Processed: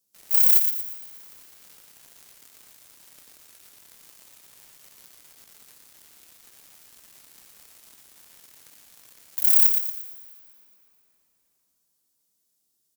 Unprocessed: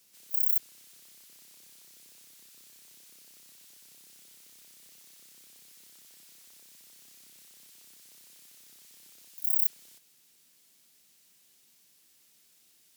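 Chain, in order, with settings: bell 2300 Hz -13.5 dB 1.7 oct; sample leveller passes 5; doubler 24 ms -14 dB; thin delay 0.116 s, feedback 40%, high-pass 1500 Hz, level -6 dB; on a send at -16.5 dB: reverb RT60 4.4 s, pre-delay 0.104 s

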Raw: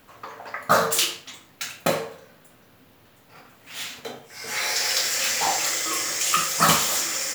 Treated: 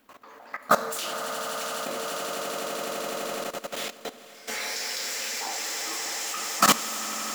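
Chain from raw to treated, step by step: resonant low shelf 180 Hz -7.5 dB, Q 3; notches 60/120/180/240/300/360/420/480 Hz; swelling echo 84 ms, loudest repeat 8, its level -10.5 dB; level quantiser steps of 16 dB

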